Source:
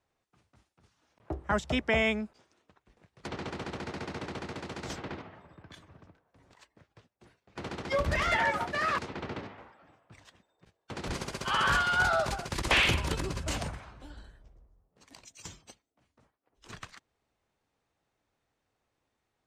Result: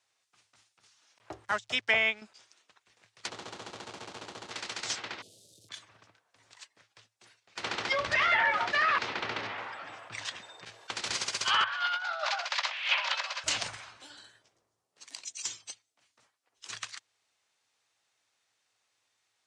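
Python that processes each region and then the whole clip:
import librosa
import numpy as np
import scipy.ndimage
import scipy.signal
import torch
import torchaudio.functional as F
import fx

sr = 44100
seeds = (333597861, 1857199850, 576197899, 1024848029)

y = fx.chain(x, sr, fx.zero_step(step_db=-43.0),
    fx.upward_expand(threshold_db=-43.0, expansion=2.5), at=(1.45, 2.22))
y = fx.chain(y, sr, fx.median_filter(points=25),
    fx.lowpass(hz=8100.0, slope=12), at=(3.29, 4.51))
y = fx.chain(y, sr, fx.crossing_spikes(level_db=-52.0),
    fx.ellip_bandstop(low_hz=520.0, high_hz=3700.0, order=3, stop_db=50), at=(5.22, 5.69))
y = fx.chain(y, sr, fx.lowpass(hz=2600.0, slope=6),
    fx.env_flatten(amount_pct=50), at=(7.63, 10.91))
y = fx.chain(y, sr, fx.steep_highpass(hz=560.0, slope=72),
    fx.over_compress(threshold_db=-31.0, ratio=-0.5),
    fx.air_absorb(metres=210.0), at=(11.64, 13.44))
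y = fx.chain(y, sr, fx.highpass(hz=110.0, slope=12),
    fx.peak_eq(hz=340.0, db=4.5, octaves=0.65),
    fx.hum_notches(base_hz=50, count=10), at=(13.97, 15.57))
y = fx.weighting(y, sr, curve='ITU-R 468')
y = fx.env_lowpass_down(y, sr, base_hz=2700.0, full_db=-21.0)
y = fx.peak_eq(y, sr, hz=110.0, db=14.5, octaves=0.2)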